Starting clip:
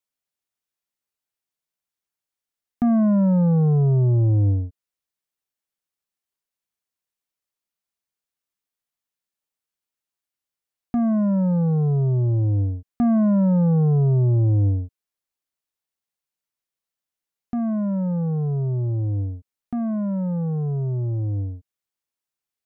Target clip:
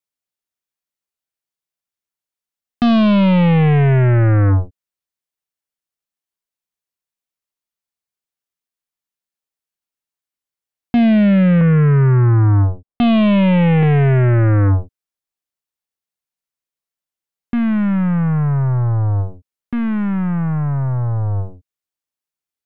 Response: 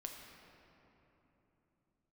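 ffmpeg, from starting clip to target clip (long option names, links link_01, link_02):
-filter_complex "[0:a]asettb=1/sr,asplit=3[link_01][link_02][link_03];[link_01]atrim=end=11.614[link_04];[link_02]atrim=start=11.61:end=13.83,asetpts=PTS-STARTPTS,afade=type=in:duration=0.004:curve=qsin,afade=type=out:start_time=2.216:duration=0.004:curve=qsin,lowpass=frequency=1100:width=0.5412,lowpass=frequency=1100:width=1.3066[link_05];[link_03]atrim=start=13.826[link_06];[link_04][link_05]acrossfade=duration=0.004:curve1=hsin:curve2=qsin[link_07];[link_07][link_06]acrossfade=duration=0.004:curve1=qsin:curve2=hsin,aeval=exprs='0.178*(cos(1*acos(clip(val(0)/0.178,-1,1)))-cos(1*PI/2))+0.0355*(cos(7*acos(clip(val(0)/0.178,-1,1)))-cos(7*PI/2))+0.01*(cos(8*acos(clip(val(0)/0.178,-1,1)))-cos(8*PI/2))':channel_layout=same,volume=6.5dB"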